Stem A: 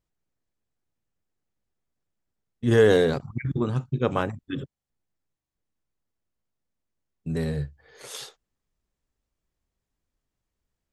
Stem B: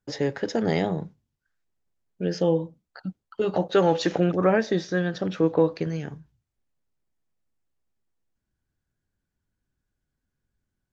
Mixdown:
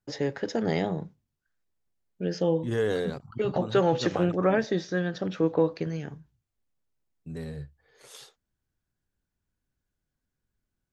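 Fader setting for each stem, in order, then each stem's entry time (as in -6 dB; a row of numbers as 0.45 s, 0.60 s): -9.5 dB, -3.0 dB; 0.00 s, 0.00 s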